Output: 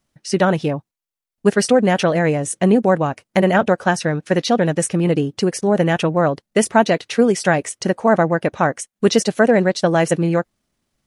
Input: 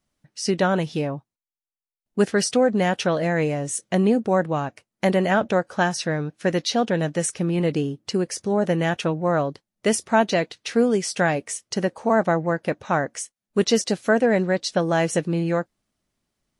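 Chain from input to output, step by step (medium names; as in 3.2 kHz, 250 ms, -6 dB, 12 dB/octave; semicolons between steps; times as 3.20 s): tempo 1.5×; dynamic bell 5.1 kHz, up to -4 dB, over -45 dBFS, Q 1.1; trim +5.5 dB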